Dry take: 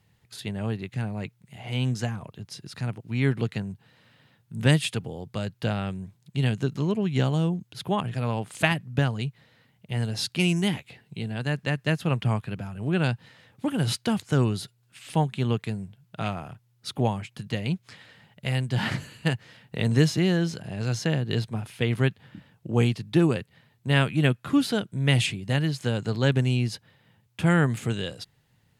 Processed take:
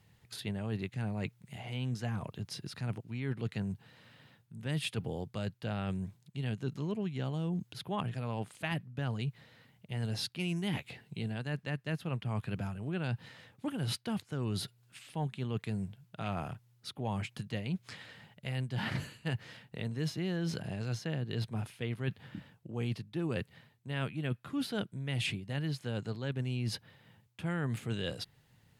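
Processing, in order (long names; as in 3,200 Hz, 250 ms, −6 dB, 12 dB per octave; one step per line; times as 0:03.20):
dynamic equaliser 7,200 Hz, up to −6 dB, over −51 dBFS, Q 1.5
reversed playback
downward compressor 8 to 1, threshold −32 dBFS, peak gain reduction 18 dB
reversed playback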